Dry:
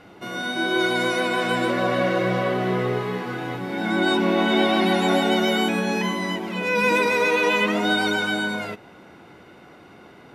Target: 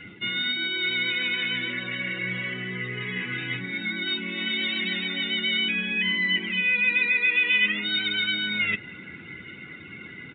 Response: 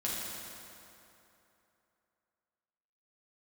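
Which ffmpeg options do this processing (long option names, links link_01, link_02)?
-af "aresample=8000,aresample=44100,areverse,acompressor=threshold=-35dB:ratio=10,areverse,afftdn=noise_reduction=16:noise_floor=-49,firequalizer=gain_entry='entry(170,0);entry(720,-20);entry(2000,14)':delay=0.05:min_phase=1,volume=6.5dB"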